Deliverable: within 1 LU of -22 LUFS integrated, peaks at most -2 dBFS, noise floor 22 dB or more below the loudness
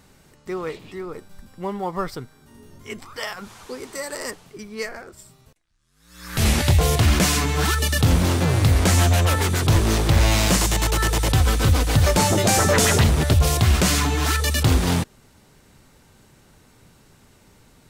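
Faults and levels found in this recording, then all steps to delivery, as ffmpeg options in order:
loudness -19.5 LUFS; peak -7.5 dBFS; loudness target -22.0 LUFS
-> -af "volume=-2.5dB"

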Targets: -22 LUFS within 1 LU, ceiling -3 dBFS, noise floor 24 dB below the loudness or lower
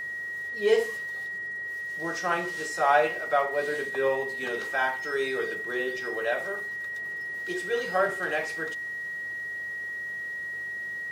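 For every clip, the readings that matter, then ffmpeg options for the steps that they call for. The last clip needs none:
hum 50 Hz; harmonics up to 200 Hz; hum level -64 dBFS; steady tone 1900 Hz; tone level -32 dBFS; loudness -29.0 LUFS; peak -9.0 dBFS; loudness target -22.0 LUFS
-> -af "bandreject=f=50:t=h:w=4,bandreject=f=100:t=h:w=4,bandreject=f=150:t=h:w=4,bandreject=f=200:t=h:w=4"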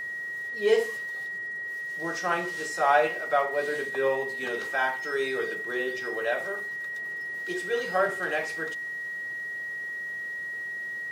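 hum none; steady tone 1900 Hz; tone level -32 dBFS
-> -af "bandreject=f=1.9k:w=30"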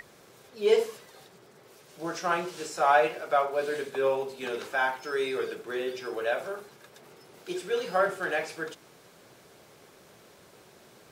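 steady tone none; loudness -29.0 LUFS; peak -9.0 dBFS; loudness target -22.0 LUFS
-> -af "volume=7dB,alimiter=limit=-3dB:level=0:latency=1"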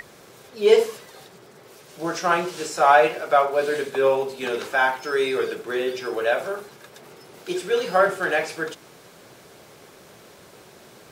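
loudness -22.0 LUFS; peak -3.0 dBFS; noise floor -49 dBFS

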